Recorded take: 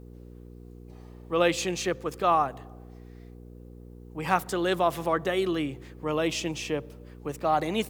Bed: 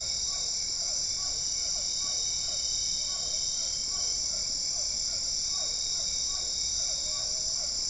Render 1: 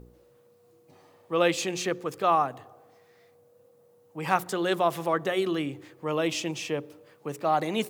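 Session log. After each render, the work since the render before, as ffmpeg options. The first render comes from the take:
-af "bandreject=f=60:t=h:w=4,bandreject=f=120:t=h:w=4,bandreject=f=180:t=h:w=4,bandreject=f=240:t=h:w=4,bandreject=f=300:t=h:w=4,bandreject=f=360:t=h:w=4,bandreject=f=420:t=h:w=4"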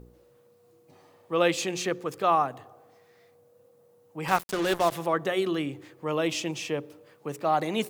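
-filter_complex "[0:a]asettb=1/sr,asplit=3[a][b][c];[a]atrim=end=4.284[d];[b]atrim=start=4.28:end=4.92,asetpts=PTS-STARTPTS,afade=t=in:d=0.004:c=qsin,afade=t=out:st=0.636:d=0.004:c=qsin,acrusher=bits=4:mix=0:aa=0.5[e];[c]atrim=start=4.916[f];[d][e]acrossfade=d=0.004:c1=hsin:c2=qsin[g];[g][f]acrossfade=d=0.004:c1=qsin:c2=hsin"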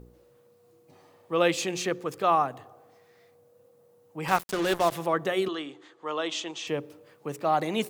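-filter_complex "[0:a]asettb=1/sr,asplit=3[a][b][c];[a]atrim=end=5.484[d];[b]atrim=start=5.48:end=6.67,asetpts=PTS-STARTPTS,afade=t=in:d=0.004:c=qsin,afade=t=out:st=1.186:d=0.004:c=qsin,highpass=420,equalizer=f=550:t=q:w=4:g=-6,equalizer=f=1.2k:t=q:w=4:g=3,equalizer=f=2.4k:t=q:w=4:g=-7,equalizer=f=3.5k:t=q:w=4:g=5,equalizer=f=5.2k:t=q:w=4:g=-5,lowpass=f=7.4k:w=0.5412,lowpass=f=7.4k:w=1.3066[e];[c]atrim=start=6.666[f];[d][e]acrossfade=d=0.004:c1=hsin:c2=qsin[g];[g][f]acrossfade=d=0.004:c1=qsin:c2=hsin"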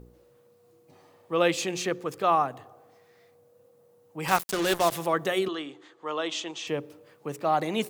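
-filter_complex "[0:a]asettb=1/sr,asplit=3[a][b][c];[a]atrim=end=4.194[d];[b]atrim=start=4.19:end=5.39,asetpts=PTS-STARTPTS,afade=t=in:d=0.004:c=qsin,afade=t=out:st=1.196:d=0.004:c=qsin,highshelf=f=3.7k:g=7[e];[c]atrim=start=5.386[f];[d][e]acrossfade=d=0.004:c1=hsin:c2=qsin[g];[g][f]acrossfade=d=0.004:c1=qsin:c2=hsin"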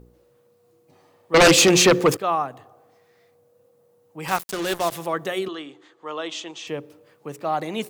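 -filter_complex "[0:a]asettb=1/sr,asplit=3[a][b][c];[a]atrim=end=1.344[d];[b]atrim=start=1.34:end=2.17,asetpts=PTS-STARTPTS,afade=t=in:d=0.004:c=qsin,afade=t=out:st=0.826:d=0.004:c=qsin,aeval=exprs='0.355*sin(PI/2*5.01*val(0)/0.355)':c=same[e];[c]atrim=start=2.166[f];[d][e]acrossfade=d=0.004:c1=hsin:c2=qsin[g];[g][f]acrossfade=d=0.004:c1=qsin:c2=hsin"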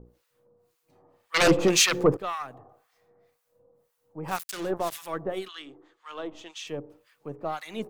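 -filter_complex "[0:a]aeval=exprs='if(lt(val(0),0),0.708*val(0),val(0))':c=same,acrossover=split=1200[a][b];[a]aeval=exprs='val(0)*(1-1/2+1/2*cos(2*PI*1.9*n/s))':c=same[c];[b]aeval=exprs='val(0)*(1-1/2-1/2*cos(2*PI*1.9*n/s))':c=same[d];[c][d]amix=inputs=2:normalize=0"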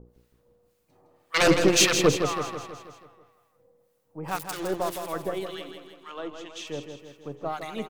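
-af "aecho=1:1:162|324|486|648|810|972|1134:0.422|0.228|0.123|0.0664|0.0359|0.0194|0.0105"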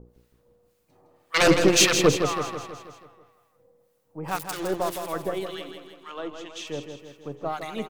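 -af "volume=1.5dB"

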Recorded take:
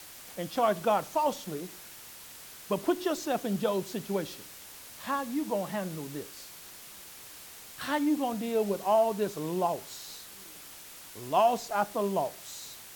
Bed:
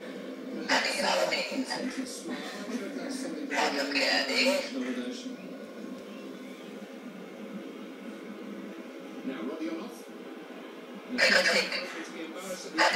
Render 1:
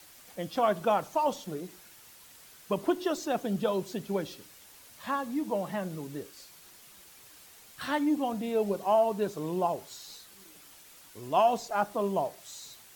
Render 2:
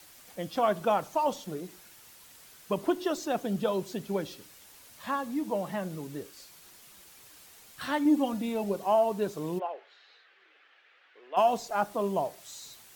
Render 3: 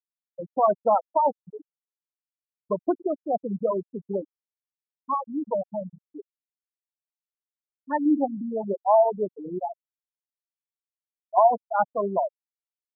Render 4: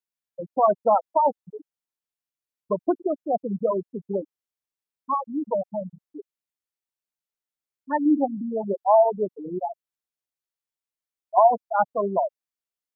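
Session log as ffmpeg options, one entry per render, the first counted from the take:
-af "afftdn=nr=7:nf=-48"
-filter_complex "[0:a]asettb=1/sr,asplit=3[a][b][c];[a]atrim=end=8.054[d];[b]atrim=start=8.05:end=8.64,asetpts=PTS-STARTPTS,afade=t=in:d=0.004:c=qsin,afade=t=out:st=0.586:d=0.004:c=qsin,aecho=1:1:3.5:0.65,atrim=end_sample=26019[e];[c]atrim=start=8.636[f];[d][e]acrossfade=d=0.004:c1=hsin:c2=qsin[g];[g][f]acrossfade=d=0.004:c1=qsin:c2=hsin,asplit=3[h][i][j];[h]afade=t=out:st=9.58:d=0.02[k];[i]highpass=f=490:w=0.5412,highpass=f=490:w=1.3066,equalizer=f=630:t=q:w=4:g=-7,equalizer=f=960:t=q:w=4:g=-10,equalizer=f=1.7k:t=q:w=4:g=5,lowpass=f=2.9k:w=0.5412,lowpass=f=2.9k:w=1.3066,afade=t=in:st=9.58:d=0.02,afade=t=out:st=11.36:d=0.02[l];[j]afade=t=in:st=11.36:d=0.02[m];[k][l][m]amix=inputs=3:normalize=0"
-af "afftfilt=real='re*gte(hypot(re,im),0.141)':imag='im*gte(hypot(re,im),0.141)':win_size=1024:overlap=0.75,equalizer=f=910:w=0.56:g=7"
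-af "volume=1.5dB"

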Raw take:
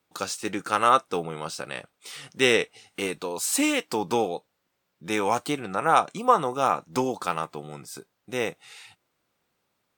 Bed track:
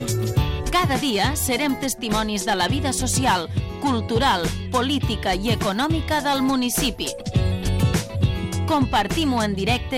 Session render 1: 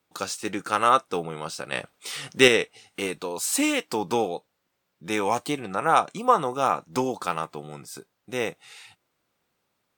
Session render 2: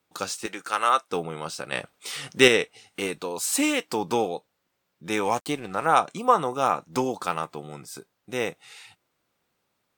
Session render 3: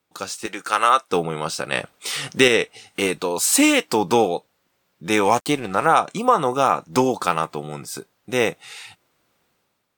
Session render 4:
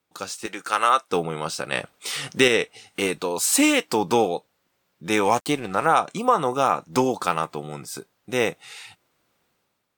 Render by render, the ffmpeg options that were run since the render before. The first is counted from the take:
-filter_complex "[0:a]asettb=1/sr,asplit=3[a][b][c];[a]atrim=end=1.724[d];[b]atrim=start=1.72:end=2.48,asetpts=PTS-STARTPTS,afade=t=in:d=0.004:c=qsin,afade=t=out:st=0.756:d=0.004:c=qsin,acontrast=57[e];[c]atrim=start=2.476[f];[d][e]acrossfade=d=0.004:c1=hsin:c2=qsin[g];[g][f]acrossfade=d=0.004:c1=qsin:c2=hsin,asettb=1/sr,asplit=3[h][i][j];[h]atrim=end=5.224[k];[i]atrim=start=5.22:end=5.71,asetpts=PTS-STARTPTS,afade=t=in:d=0.004:c=qsin,afade=t=out:st=0.486:d=0.004:c=qsin,bandreject=f=1.4k:w=5.4[l];[j]atrim=start=5.706[m];[k][l]acrossfade=d=0.004:c1=hsin:c2=qsin[n];[n][m]acrossfade=d=0.004:c1=qsin:c2=hsin"
-filter_complex "[0:a]asettb=1/sr,asplit=3[a][b][c];[a]atrim=end=0.464[d];[b]atrim=start=0.46:end=1.11,asetpts=PTS-STARTPTS,afade=t=in:d=0.004:c=qsin,afade=t=out:st=0.646:d=0.004:c=qsin,highpass=f=840:p=1[e];[c]atrim=start=1.106[f];[d][e]acrossfade=d=0.004:c1=hsin:c2=qsin[g];[g][f]acrossfade=d=0.004:c1=qsin:c2=hsin,asettb=1/sr,asplit=3[h][i][j];[h]atrim=end=5.244[k];[i]atrim=start=5.24:end=5.86,asetpts=PTS-STARTPTS,afade=t=in:d=0.004:c=qsin,afade=t=out:st=0.616:d=0.004:c=qsin,aeval=exprs='sgn(val(0))*max(abs(val(0))-0.00422,0)':c=same[l];[j]atrim=start=5.856[m];[k][l]acrossfade=d=0.004:c1=hsin:c2=qsin[n];[n][m]acrossfade=d=0.004:c1=qsin:c2=hsin"
-af "alimiter=limit=-11dB:level=0:latency=1:release=195,dynaudnorm=f=120:g=9:m=8.5dB"
-af "volume=-2.5dB"

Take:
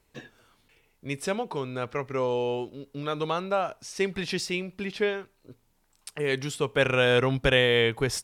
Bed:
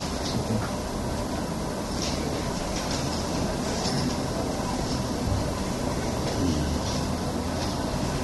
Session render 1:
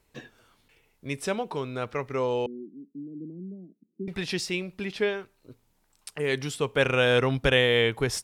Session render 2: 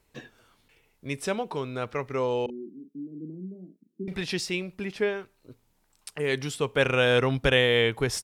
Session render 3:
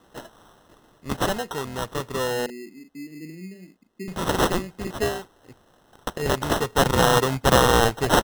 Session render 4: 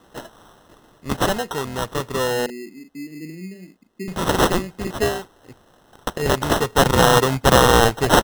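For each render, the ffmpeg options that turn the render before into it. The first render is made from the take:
-filter_complex "[0:a]asettb=1/sr,asplit=3[a][b][c];[a]atrim=end=2.464[d];[b]atrim=start=2.46:end=4.08,asetpts=PTS-STARTPTS,afade=t=in:d=0.004:c=qsin,afade=t=out:st=1.616:d=0.004:c=qsin,asuperpass=centerf=240:order=8:qfactor=1.4[e];[c]atrim=start=4.076[f];[d][e]acrossfade=d=0.004:c1=hsin:c2=qsin[g];[g][f]acrossfade=d=0.004:c1=qsin:c2=hsin"
-filter_complex "[0:a]asplit=3[a][b][c];[a]afade=t=out:st=2.48:d=0.02[d];[b]asplit=2[e][f];[f]adelay=38,volume=-8.5dB[g];[e][g]amix=inputs=2:normalize=0,afade=t=in:st=2.48:d=0.02,afade=t=out:st=4.2:d=0.02[h];[c]afade=t=in:st=4.2:d=0.02[i];[d][h][i]amix=inputs=3:normalize=0,asettb=1/sr,asplit=3[j][k][l];[j]atrim=end=4.754[m];[k]atrim=start=4.75:end=5.16,asetpts=PTS-STARTPTS,afade=t=in:d=0.004:c=qsin,afade=t=out:st=0.406:d=0.004:c=qsin,equalizer=f=3.7k:w=1.5:g=-6[n];[l]atrim=start=5.156[o];[m][n]acrossfade=d=0.004:c1=hsin:c2=qsin[p];[p][o]acrossfade=d=0.004:c1=qsin:c2=hsin"
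-af "crystalizer=i=6:c=0,acrusher=samples=19:mix=1:aa=0.000001"
-af "volume=4dB,alimiter=limit=-1dB:level=0:latency=1"

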